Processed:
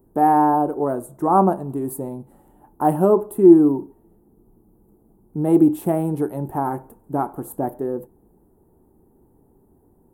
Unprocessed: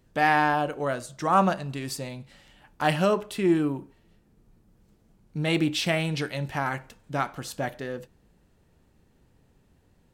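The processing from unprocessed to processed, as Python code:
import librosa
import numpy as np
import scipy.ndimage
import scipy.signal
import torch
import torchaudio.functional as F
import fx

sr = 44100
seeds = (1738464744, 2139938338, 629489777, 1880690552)

y = fx.curve_eq(x, sr, hz=(150.0, 380.0, 550.0, 860.0, 2300.0, 5200.0, 11000.0), db=(0, 12, 0, 7, -25, -29, 8))
y = y * 10.0 ** (2.0 / 20.0)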